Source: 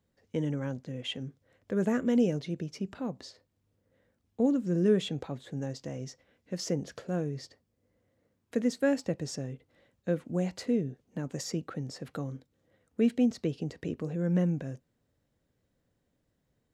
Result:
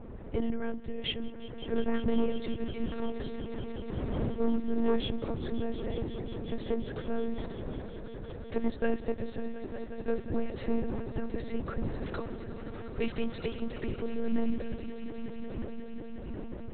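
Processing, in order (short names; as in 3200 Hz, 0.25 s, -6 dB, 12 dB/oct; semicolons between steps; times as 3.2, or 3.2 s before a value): wind noise 310 Hz -47 dBFS; 12.07–13.54 tilt +3.5 dB/oct; in parallel at +2 dB: compressor 6:1, threshold -43 dBFS, peak gain reduction 21.5 dB; on the sum: soft clip -20 dBFS, distortion -17 dB; swelling echo 0.18 s, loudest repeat 5, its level -15.5 dB; monotone LPC vocoder at 8 kHz 230 Hz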